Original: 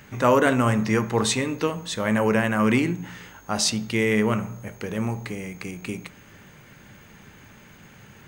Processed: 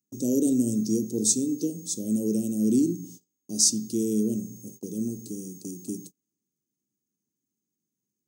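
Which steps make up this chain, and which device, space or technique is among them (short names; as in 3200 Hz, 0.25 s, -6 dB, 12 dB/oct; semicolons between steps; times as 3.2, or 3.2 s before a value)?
vinyl LP (crackle 110/s -44 dBFS; pink noise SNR 37 dB); elliptic band-stop 310–6000 Hz, stop band 70 dB; gate -42 dBFS, range -34 dB; HPF 310 Hz 12 dB/oct; gain +6 dB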